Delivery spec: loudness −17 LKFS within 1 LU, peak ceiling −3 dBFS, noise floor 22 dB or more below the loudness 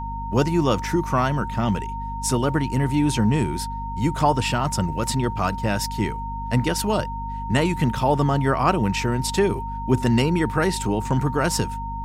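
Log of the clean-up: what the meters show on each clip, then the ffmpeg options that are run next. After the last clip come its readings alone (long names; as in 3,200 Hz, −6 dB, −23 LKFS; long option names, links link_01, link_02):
mains hum 50 Hz; hum harmonics up to 250 Hz; level of the hum −29 dBFS; interfering tone 920 Hz; level of the tone −30 dBFS; integrated loudness −22.5 LKFS; sample peak −6.0 dBFS; target loudness −17.0 LKFS
→ -af "bandreject=frequency=50:width_type=h:width=6,bandreject=frequency=100:width_type=h:width=6,bandreject=frequency=150:width_type=h:width=6,bandreject=frequency=200:width_type=h:width=6,bandreject=frequency=250:width_type=h:width=6"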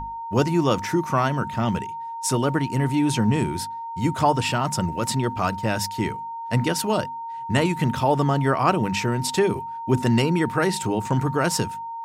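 mains hum none found; interfering tone 920 Hz; level of the tone −30 dBFS
→ -af "bandreject=frequency=920:width=30"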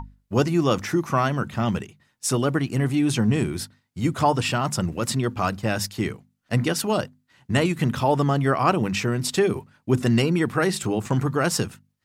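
interfering tone none found; integrated loudness −23.5 LKFS; sample peak −5.5 dBFS; target loudness −17.0 LKFS
→ -af "volume=6.5dB,alimiter=limit=-3dB:level=0:latency=1"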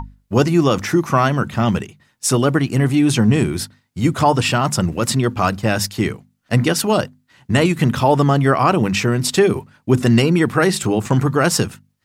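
integrated loudness −17.5 LKFS; sample peak −3.0 dBFS; background noise floor −66 dBFS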